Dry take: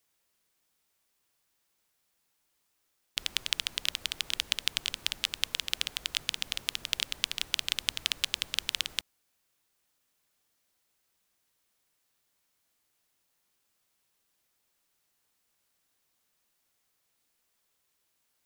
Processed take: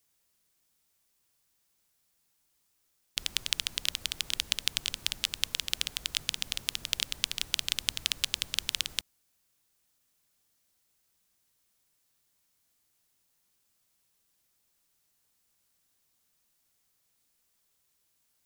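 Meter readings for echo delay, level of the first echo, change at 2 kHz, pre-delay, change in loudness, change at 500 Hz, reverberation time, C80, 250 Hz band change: no echo audible, no echo audible, −1.5 dB, no reverb audible, 0.0 dB, −1.5 dB, no reverb audible, no reverb audible, +1.0 dB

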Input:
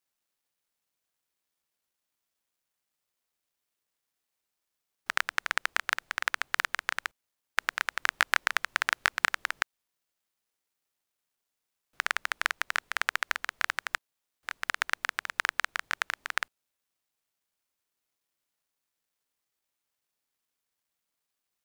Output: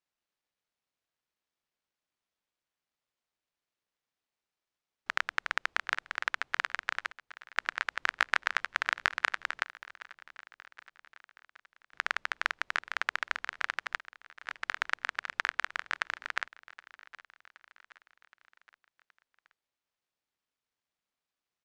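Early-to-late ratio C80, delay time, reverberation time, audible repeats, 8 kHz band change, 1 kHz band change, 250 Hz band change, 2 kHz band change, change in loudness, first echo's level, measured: no reverb audible, 771 ms, no reverb audible, 3, −9.5 dB, −2.0 dB, −1.5 dB, −2.5 dB, −2.5 dB, −19.0 dB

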